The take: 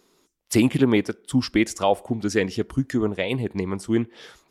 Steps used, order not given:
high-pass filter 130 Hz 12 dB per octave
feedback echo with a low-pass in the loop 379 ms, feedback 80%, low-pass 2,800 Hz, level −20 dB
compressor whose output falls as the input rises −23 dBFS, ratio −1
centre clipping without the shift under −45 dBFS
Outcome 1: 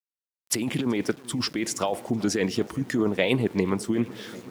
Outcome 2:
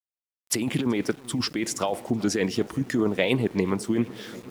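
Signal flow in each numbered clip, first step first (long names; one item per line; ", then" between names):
compressor whose output falls as the input rises, then feedback echo with a low-pass in the loop, then centre clipping without the shift, then high-pass filter
high-pass filter, then compressor whose output falls as the input rises, then feedback echo with a low-pass in the loop, then centre clipping without the shift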